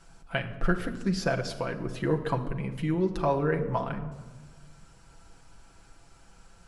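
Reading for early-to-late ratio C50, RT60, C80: 11.5 dB, 1.3 s, 13.0 dB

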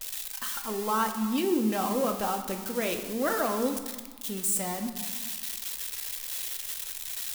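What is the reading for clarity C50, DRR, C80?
8.0 dB, 5.0 dB, 10.5 dB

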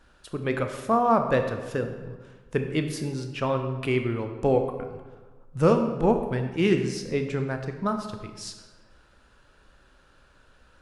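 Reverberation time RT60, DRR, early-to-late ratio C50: 1.3 s, 5.5 dB, 7.5 dB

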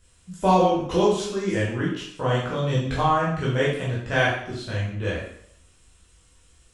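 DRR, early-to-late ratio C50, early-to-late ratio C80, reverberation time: −8.0 dB, 2.0 dB, 6.0 dB, 0.65 s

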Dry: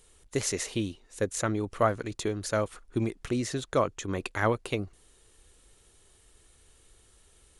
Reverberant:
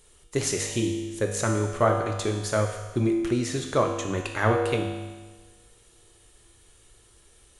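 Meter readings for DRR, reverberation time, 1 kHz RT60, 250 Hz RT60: 1.5 dB, 1.3 s, 1.3 s, 1.3 s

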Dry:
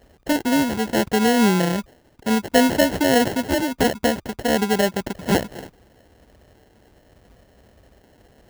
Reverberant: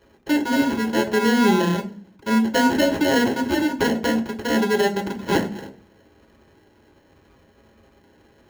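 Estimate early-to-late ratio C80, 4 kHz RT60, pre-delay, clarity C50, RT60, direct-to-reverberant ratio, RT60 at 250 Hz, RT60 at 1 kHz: 19.0 dB, 0.45 s, 3 ms, 14.5 dB, 0.40 s, 2.0 dB, 0.70 s, 0.35 s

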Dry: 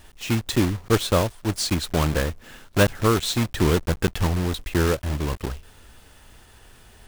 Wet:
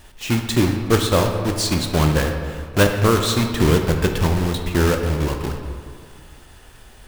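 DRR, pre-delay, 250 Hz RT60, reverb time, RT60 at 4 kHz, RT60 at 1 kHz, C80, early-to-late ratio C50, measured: 4.0 dB, 10 ms, 2.1 s, 2.1 s, 1.2 s, 2.1 s, 7.0 dB, 5.5 dB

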